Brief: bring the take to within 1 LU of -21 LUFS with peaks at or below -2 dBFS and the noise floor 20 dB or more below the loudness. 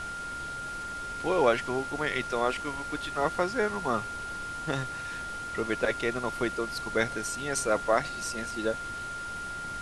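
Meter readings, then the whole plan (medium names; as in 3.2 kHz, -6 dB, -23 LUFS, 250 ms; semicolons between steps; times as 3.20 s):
steady tone 1.4 kHz; tone level -35 dBFS; noise floor -37 dBFS; noise floor target -51 dBFS; loudness -30.5 LUFS; peak level -10.0 dBFS; loudness target -21.0 LUFS
-> band-stop 1.4 kHz, Q 30; noise print and reduce 14 dB; trim +9.5 dB; peak limiter -2 dBFS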